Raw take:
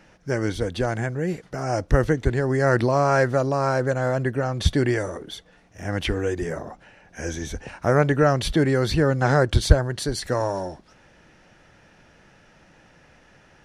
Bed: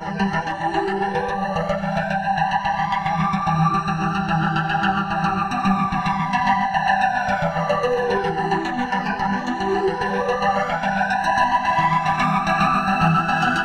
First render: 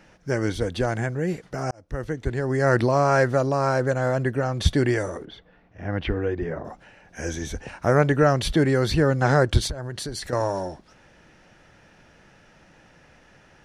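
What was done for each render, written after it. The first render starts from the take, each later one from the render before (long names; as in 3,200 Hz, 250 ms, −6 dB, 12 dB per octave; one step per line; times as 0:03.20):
0:01.71–0:02.71: fade in
0:05.25–0:06.65: high-frequency loss of the air 320 metres
0:09.67–0:10.33: downward compressor 5 to 1, threshold −28 dBFS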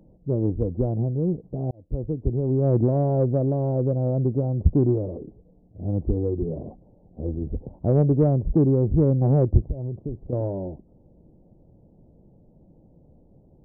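Gaussian smoothing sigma 17 samples
in parallel at −3.5 dB: soft clipping −18 dBFS, distortion −14 dB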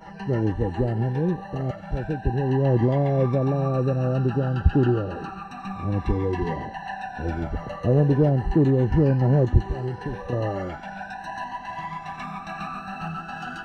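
mix in bed −15 dB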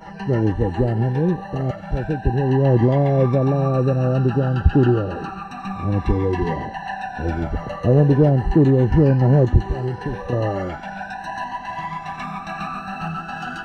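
level +4.5 dB
brickwall limiter −3 dBFS, peak gain reduction 2.5 dB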